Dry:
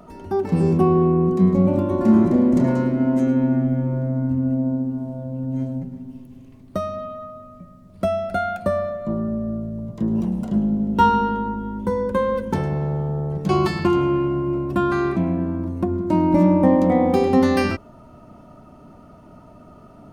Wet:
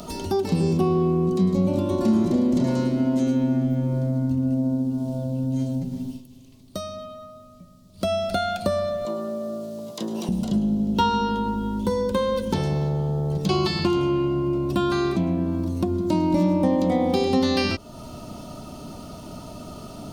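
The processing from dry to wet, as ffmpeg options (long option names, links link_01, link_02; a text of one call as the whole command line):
ffmpeg -i in.wav -filter_complex "[0:a]asettb=1/sr,asplit=3[link_01][link_02][link_03];[link_01]atrim=end=9.054[link_04];[link_02]atrim=start=9.05:end=10.29,asetpts=PTS-STARTPTS,afade=type=in:duration=0.004:curve=qsin,afade=type=out:start_time=1.236:duration=0.004:curve=qsin,highpass=480[link_05];[link_03]atrim=start=10.286[link_06];[link_04][link_05]acrossfade=duration=0.004:curve1=hsin:curve2=qsin[link_07];[link_07][link_06]acrossfade=duration=0.004:curve1=qsin:curve2=hsin,asplit=3[link_08][link_09][link_10];[link_08]afade=type=out:start_time=12.88:duration=0.02[link_11];[link_09]adynamicequalizer=threshold=0.0126:dfrequency=2400:dqfactor=0.7:tfrequency=2400:tqfactor=0.7:attack=5:release=100:ratio=0.375:range=2.5:mode=cutabove:tftype=highshelf,afade=type=in:start_time=12.88:duration=0.02,afade=type=out:start_time=15.51:duration=0.02[link_12];[link_10]afade=type=in:start_time=15.51:duration=0.02[link_13];[link_11][link_12][link_13]amix=inputs=3:normalize=0,asplit=3[link_14][link_15][link_16];[link_14]atrim=end=6.22,asetpts=PTS-STARTPTS,afade=type=out:start_time=6.05:duration=0.17:silence=0.237137[link_17];[link_15]atrim=start=6.22:end=7.96,asetpts=PTS-STARTPTS,volume=-12.5dB[link_18];[link_16]atrim=start=7.96,asetpts=PTS-STARTPTS,afade=type=in:duration=0.17:silence=0.237137[link_19];[link_17][link_18][link_19]concat=n=3:v=0:a=1,acrossover=split=4400[link_20][link_21];[link_21]acompressor=threshold=-55dB:ratio=4:attack=1:release=60[link_22];[link_20][link_22]amix=inputs=2:normalize=0,highshelf=frequency=2700:width_type=q:width=1.5:gain=13,acompressor=threshold=-35dB:ratio=2,volume=7.5dB" out.wav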